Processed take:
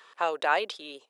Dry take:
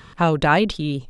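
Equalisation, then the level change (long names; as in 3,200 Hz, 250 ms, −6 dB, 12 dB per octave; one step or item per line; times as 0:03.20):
high-pass filter 460 Hz 24 dB per octave
−7.0 dB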